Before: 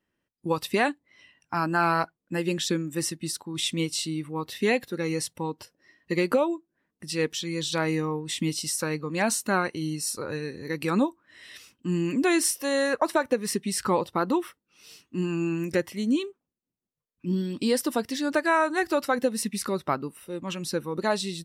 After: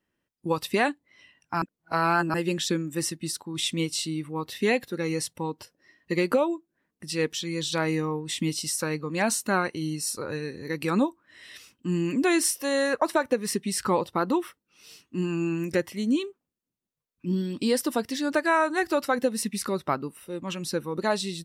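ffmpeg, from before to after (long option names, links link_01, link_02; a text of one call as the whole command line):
ffmpeg -i in.wav -filter_complex "[0:a]asplit=3[link_01][link_02][link_03];[link_01]atrim=end=1.622[link_04];[link_02]atrim=start=1.618:end=2.342,asetpts=PTS-STARTPTS,areverse[link_05];[link_03]atrim=start=2.338[link_06];[link_04][link_05]acrossfade=duration=0.004:curve1=hsin:curve2=hsin[link_07];[link_07][link_06]acrossfade=duration=0.004:curve1=hsin:curve2=hsin" out.wav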